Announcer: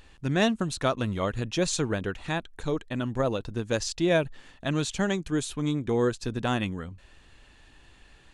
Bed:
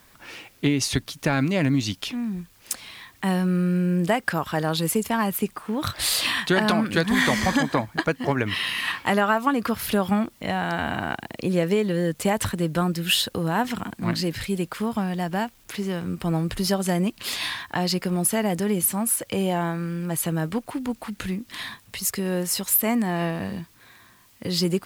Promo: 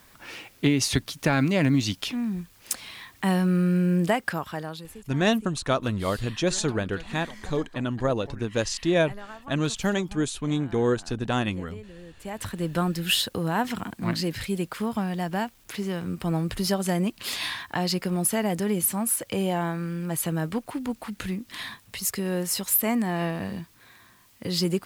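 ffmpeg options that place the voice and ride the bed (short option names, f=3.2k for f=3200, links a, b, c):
-filter_complex "[0:a]adelay=4850,volume=1.5dB[a];[1:a]volume=19.5dB,afade=t=out:st=3.96:d=0.93:silence=0.0841395,afade=t=in:st=12.19:d=0.59:silence=0.105925[b];[a][b]amix=inputs=2:normalize=0"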